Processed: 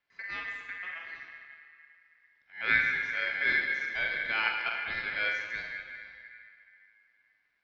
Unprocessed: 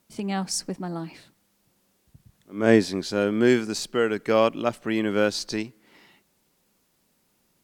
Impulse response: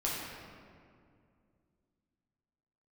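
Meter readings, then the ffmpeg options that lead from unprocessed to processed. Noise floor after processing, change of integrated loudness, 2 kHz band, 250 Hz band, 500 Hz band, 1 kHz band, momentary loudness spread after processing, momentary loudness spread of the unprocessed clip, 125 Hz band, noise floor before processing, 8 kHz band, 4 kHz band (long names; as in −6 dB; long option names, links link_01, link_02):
−73 dBFS, −5.5 dB, +5.5 dB, −28.5 dB, −24.0 dB, −8.0 dB, 20 LU, 13 LU, −21.5 dB, −69 dBFS, below −25 dB, −6.0 dB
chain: -filter_complex "[0:a]aemphasis=mode=reproduction:type=50fm,highpass=frequency=180:width_type=q:width=0.5412,highpass=frequency=180:width_type=q:width=1.307,lowpass=frequency=3600:width_type=q:width=0.5176,lowpass=frequency=3600:width_type=q:width=0.7071,lowpass=frequency=3600:width_type=q:width=1.932,afreqshift=-89,asplit=2[link_01][link_02];[1:a]atrim=start_sample=2205,adelay=44[link_03];[link_02][link_03]afir=irnorm=-1:irlink=0,volume=-7dB[link_04];[link_01][link_04]amix=inputs=2:normalize=0,aeval=exprs='val(0)*sin(2*PI*1900*n/s)':channel_layout=same,volume=-8.5dB"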